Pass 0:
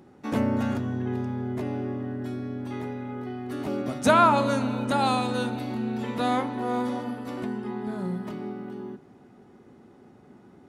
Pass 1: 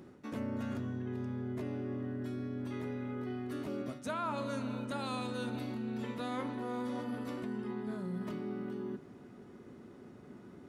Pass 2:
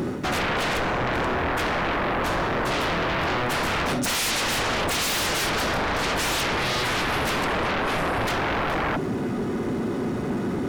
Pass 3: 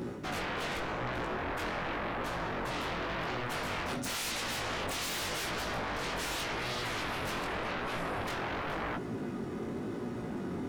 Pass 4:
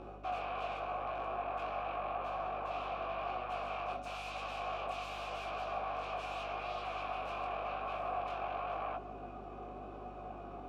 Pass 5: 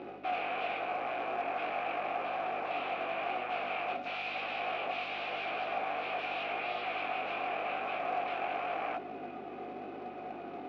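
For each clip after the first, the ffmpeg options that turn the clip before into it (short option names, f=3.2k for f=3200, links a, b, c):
-af "equalizer=f=800:w=6.9:g=-10.5,areverse,acompressor=threshold=-36dB:ratio=5,areverse"
-af "aeval=exprs='0.0531*sin(PI/2*10*val(0)/0.0531)':c=same,volume=4dB"
-af "flanger=delay=16.5:depth=6.8:speed=0.89,volume=-8dB"
-filter_complex "[0:a]asplit=3[a][b][c];[a]bandpass=f=730:t=q:w=8,volume=0dB[d];[b]bandpass=f=1.09k:t=q:w=8,volume=-6dB[e];[c]bandpass=f=2.44k:t=q:w=8,volume=-9dB[f];[d][e][f]amix=inputs=3:normalize=0,aeval=exprs='val(0)+0.00112*(sin(2*PI*50*n/s)+sin(2*PI*2*50*n/s)/2+sin(2*PI*3*50*n/s)/3+sin(2*PI*4*50*n/s)/4+sin(2*PI*5*50*n/s)/5)':c=same,volume=6.5dB"
-filter_complex "[0:a]asplit=2[a][b];[b]acrusher=bits=3:mode=log:mix=0:aa=0.000001,volume=-5.5dB[c];[a][c]amix=inputs=2:normalize=0,highpass=240,equalizer=f=290:t=q:w=4:g=4,equalizer=f=610:t=q:w=4:g=-4,equalizer=f=1.1k:t=q:w=4:g=-10,equalizer=f=2k:t=q:w=4:g=9,lowpass=f=3.9k:w=0.5412,lowpass=f=3.9k:w=1.3066,volume=2.5dB"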